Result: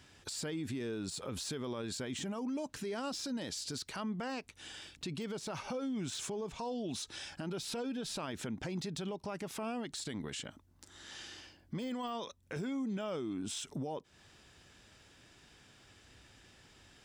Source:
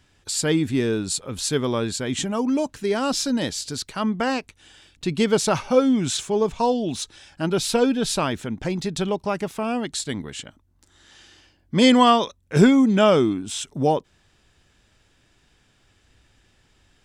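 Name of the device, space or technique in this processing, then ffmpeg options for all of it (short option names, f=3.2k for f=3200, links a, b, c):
broadcast voice chain: -af "highpass=f=100:p=1,deesser=0.6,acompressor=threshold=-32dB:ratio=3,equalizer=f=5.2k:t=o:w=0.38:g=2,alimiter=level_in=9dB:limit=-24dB:level=0:latency=1:release=78,volume=-9dB,volume=1.5dB"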